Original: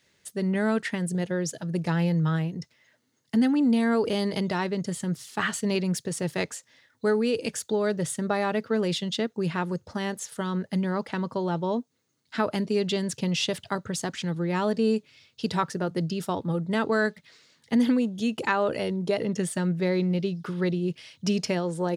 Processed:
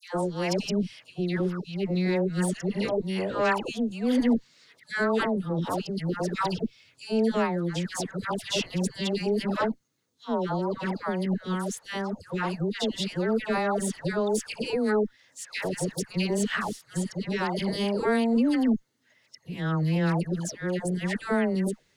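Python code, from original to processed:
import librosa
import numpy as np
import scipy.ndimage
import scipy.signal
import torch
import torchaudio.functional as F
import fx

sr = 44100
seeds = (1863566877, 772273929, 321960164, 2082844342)

y = np.flip(x).copy()
y = fx.cheby_harmonics(y, sr, harmonics=(4,), levels_db=(-18,), full_scale_db=-9.0)
y = fx.dispersion(y, sr, late='lows', ms=143.0, hz=1100.0)
y = y * 10.0 ** (-1.5 / 20.0)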